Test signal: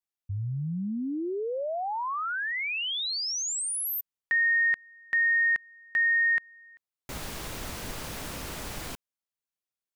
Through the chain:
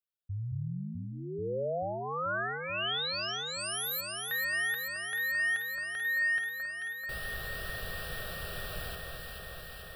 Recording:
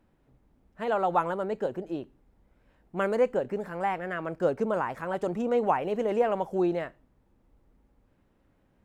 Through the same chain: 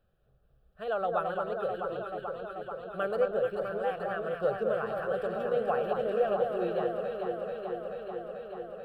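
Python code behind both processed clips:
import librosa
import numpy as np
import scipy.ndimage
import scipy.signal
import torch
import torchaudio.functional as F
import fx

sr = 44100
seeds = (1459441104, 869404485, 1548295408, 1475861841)

y = fx.fixed_phaser(x, sr, hz=1400.0, stages=8)
y = fx.echo_alternate(y, sr, ms=218, hz=1500.0, feedback_pct=88, wet_db=-3.5)
y = F.gain(torch.from_numpy(y), -2.5).numpy()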